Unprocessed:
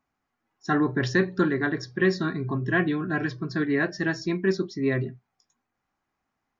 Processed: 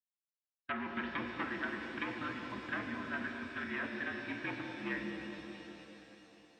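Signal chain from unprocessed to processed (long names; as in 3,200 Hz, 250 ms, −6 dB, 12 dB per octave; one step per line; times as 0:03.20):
wave folding −18.5 dBFS
single-sideband voice off tune −62 Hz 170–3,000 Hz
first difference
downward expander −53 dBFS
on a send: delay with a low-pass on its return 210 ms, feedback 57%, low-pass 630 Hz, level −4.5 dB
on the sum: treble cut that deepens with the level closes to 1,200 Hz, closed at −39 dBFS
low-shelf EQ 230 Hz +11.5 dB
reverb with rising layers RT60 3.7 s, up +7 semitones, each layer −8 dB, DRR 3 dB
level +5.5 dB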